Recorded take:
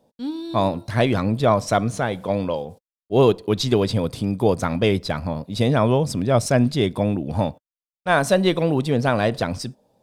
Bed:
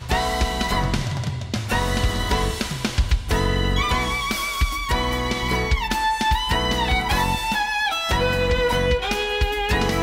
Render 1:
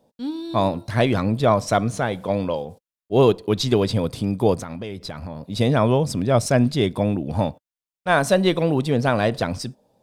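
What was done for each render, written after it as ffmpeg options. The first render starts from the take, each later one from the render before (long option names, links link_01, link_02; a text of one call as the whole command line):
ffmpeg -i in.wav -filter_complex "[0:a]asettb=1/sr,asplit=3[link_01][link_02][link_03];[link_01]atrim=end=4.584[link_04];[link_02]atrim=start=4.58:end=5.43,asetpts=PTS-STARTPTS,afade=type=in:duration=0.004:curve=qsin,afade=type=out:start_time=0.846:duration=0.004:curve=qsin,acompressor=threshold=-29dB:ratio=5:attack=3.2:release=140:knee=1:detection=peak[link_05];[link_03]atrim=start=5.426[link_06];[link_04][link_05]acrossfade=duration=0.004:curve1=hsin:curve2=qsin[link_07];[link_07][link_06]acrossfade=duration=0.004:curve1=qsin:curve2=hsin" out.wav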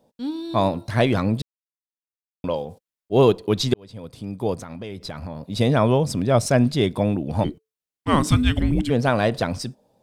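ffmpeg -i in.wav -filter_complex "[0:a]asplit=3[link_01][link_02][link_03];[link_01]afade=type=out:start_time=7.43:duration=0.02[link_04];[link_02]afreqshift=-440,afade=type=in:start_time=7.43:duration=0.02,afade=type=out:start_time=8.89:duration=0.02[link_05];[link_03]afade=type=in:start_time=8.89:duration=0.02[link_06];[link_04][link_05][link_06]amix=inputs=3:normalize=0,asplit=4[link_07][link_08][link_09][link_10];[link_07]atrim=end=1.42,asetpts=PTS-STARTPTS,afade=type=out:start_time=1.416:duration=0.004:curve=hsin[link_11];[link_08]atrim=start=1.42:end=2.44,asetpts=PTS-STARTPTS,volume=0[link_12];[link_09]atrim=start=2.44:end=3.74,asetpts=PTS-STARTPTS,afade=type=in:duration=0.004:curve=hsin,afade=type=out:start_time=1.296:duration=0.004:curve=hsin[link_13];[link_10]atrim=start=3.74,asetpts=PTS-STARTPTS,afade=type=in:duration=1.43[link_14];[link_11][link_12][link_13][link_14]concat=n=4:v=0:a=1" out.wav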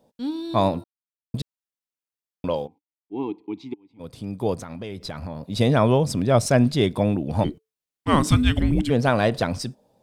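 ffmpeg -i in.wav -filter_complex "[0:a]asplit=3[link_01][link_02][link_03];[link_01]afade=type=out:start_time=2.66:duration=0.02[link_04];[link_02]asplit=3[link_05][link_06][link_07];[link_05]bandpass=frequency=300:width_type=q:width=8,volume=0dB[link_08];[link_06]bandpass=frequency=870:width_type=q:width=8,volume=-6dB[link_09];[link_07]bandpass=frequency=2240:width_type=q:width=8,volume=-9dB[link_10];[link_08][link_09][link_10]amix=inputs=3:normalize=0,afade=type=in:start_time=2.66:duration=0.02,afade=type=out:start_time=3.99:duration=0.02[link_11];[link_03]afade=type=in:start_time=3.99:duration=0.02[link_12];[link_04][link_11][link_12]amix=inputs=3:normalize=0,asplit=3[link_13][link_14][link_15];[link_13]atrim=end=0.84,asetpts=PTS-STARTPTS,afade=type=out:start_time=0.836:duration=0.004:curve=hsin[link_16];[link_14]atrim=start=0.84:end=1.34,asetpts=PTS-STARTPTS,volume=0[link_17];[link_15]atrim=start=1.34,asetpts=PTS-STARTPTS,afade=type=in:duration=0.004:curve=hsin[link_18];[link_16][link_17][link_18]concat=n=3:v=0:a=1" out.wav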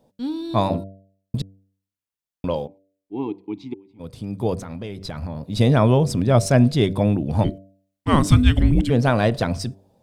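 ffmpeg -i in.wav -af "lowshelf=frequency=170:gain=7,bandreject=frequency=96.71:width_type=h:width=4,bandreject=frequency=193.42:width_type=h:width=4,bandreject=frequency=290.13:width_type=h:width=4,bandreject=frequency=386.84:width_type=h:width=4,bandreject=frequency=483.55:width_type=h:width=4,bandreject=frequency=580.26:width_type=h:width=4,bandreject=frequency=676.97:width_type=h:width=4" out.wav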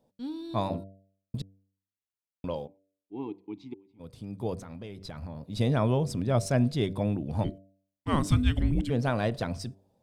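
ffmpeg -i in.wav -af "volume=-9.5dB" out.wav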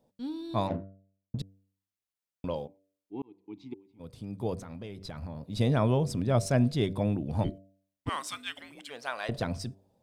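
ffmpeg -i in.wav -filter_complex "[0:a]asettb=1/sr,asplit=3[link_01][link_02][link_03];[link_01]atrim=end=0.674[link_04];[link_02]atrim=start=0.67:end=1.39,asetpts=PTS-STARTPTS,afade=type=in:duration=0.004:curve=qsin,afade=type=out:start_time=0.716:duration=0.004:curve=qsin,adynamicsmooth=sensitivity=4:basefreq=660[link_05];[link_03]atrim=start=1.386[link_06];[link_04][link_05]acrossfade=duration=0.004:curve1=hsin:curve2=qsin[link_07];[link_07][link_06]acrossfade=duration=0.004:curve1=qsin:curve2=hsin,asettb=1/sr,asplit=3[link_08][link_09][link_10];[link_08]atrim=end=8.094[link_11];[link_09]atrim=start=8.09:end=9.29,asetpts=PTS-STARTPTS,afade=type=in:duration=0.004:curve=qsin,afade=type=out:start_time=1.196:duration=0.004:curve=qsin,highpass=1000[link_12];[link_10]atrim=start=9.286[link_13];[link_11][link_12]acrossfade=duration=0.004:curve1=hsin:curve2=qsin[link_14];[link_14][link_13]acrossfade=duration=0.004:curve1=qsin:curve2=hsin,asplit=2[link_15][link_16];[link_15]atrim=end=3.22,asetpts=PTS-STARTPTS,afade=type=out:start_time=3.216:duration=0.004:curve=hsin[link_17];[link_16]atrim=start=3.22,asetpts=PTS-STARTPTS,afade=type=in:duration=0.5[link_18];[link_17][link_18]concat=n=2:v=0:a=1" out.wav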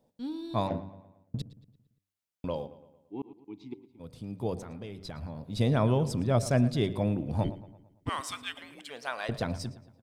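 ffmpeg -i in.wav -filter_complex "[0:a]asplit=2[link_01][link_02];[link_02]adelay=113,lowpass=frequency=4000:poles=1,volume=-16dB,asplit=2[link_03][link_04];[link_04]adelay=113,lowpass=frequency=4000:poles=1,volume=0.51,asplit=2[link_05][link_06];[link_06]adelay=113,lowpass=frequency=4000:poles=1,volume=0.51,asplit=2[link_07][link_08];[link_08]adelay=113,lowpass=frequency=4000:poles=1,volume=0.51,asplit=2[link_09][link_10];[link_10]adelay=113,lowpass=frequency=4000:poles=1,volume=0.51[link_11];[link_01][link_03][link_05][link_07][link_09][link_11]amix=inputs=6:normalize=0" out.wav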